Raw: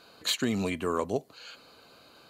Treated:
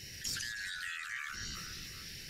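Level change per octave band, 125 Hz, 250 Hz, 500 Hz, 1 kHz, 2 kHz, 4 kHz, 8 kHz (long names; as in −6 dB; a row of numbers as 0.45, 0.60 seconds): −12.5, −24.0, −31.5, −13.5, +1.5, −6.0, −1.5 decibels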